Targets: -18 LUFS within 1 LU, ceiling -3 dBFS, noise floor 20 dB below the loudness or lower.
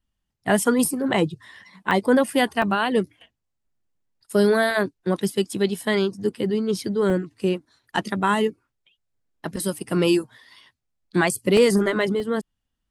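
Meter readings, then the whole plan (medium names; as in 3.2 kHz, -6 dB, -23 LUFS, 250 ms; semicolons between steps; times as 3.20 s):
dropouts 7; longest dropout 1.8 ms; loudness -22.5 LUFS; peak level -5.5 dBFS; loudness target -18.0 LUFS
-> interpolate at 1.91/2.62/4.71/5.78/7.10/11.57/12.20 s, 1.8 ms; trim +4.5 dB; peak limiter -3 dBFS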